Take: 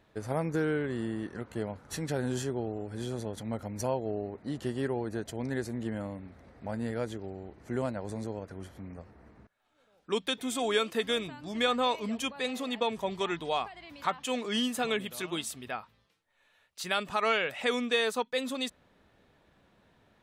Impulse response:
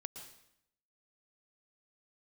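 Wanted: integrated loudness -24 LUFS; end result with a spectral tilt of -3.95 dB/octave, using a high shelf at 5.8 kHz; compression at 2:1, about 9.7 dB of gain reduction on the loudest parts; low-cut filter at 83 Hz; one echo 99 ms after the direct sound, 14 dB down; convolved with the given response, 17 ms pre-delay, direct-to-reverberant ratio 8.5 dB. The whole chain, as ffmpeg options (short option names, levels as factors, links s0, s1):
-filter_complex "[0:a]highpass=83,highshelf=f=5800:g=6,acompressor=threshold=0.00891:ratio=2,aecho=1:1:99:0.2,asplit=2[s0][s1];[1:a]atrim=start_sample=2205,adelay=17[s2];[s1][s2]afir=irnorm=-1:irlink=0,volume=0.562[s3];[s0][s3]amix=inputs=2:normalize=0,volume=5.62"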